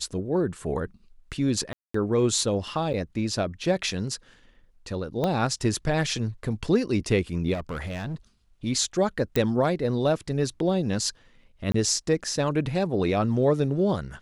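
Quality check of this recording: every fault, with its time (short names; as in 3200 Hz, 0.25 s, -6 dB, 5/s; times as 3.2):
1.73–1.94 gap 0.214 s
2.93–2.94 gap 8.5 ms
5.24 pop -14 dBFS
7.53–8.15 clipped -28 dBFS
9.36 pop -10 dBFS
11.72–11.74 gap 24 ms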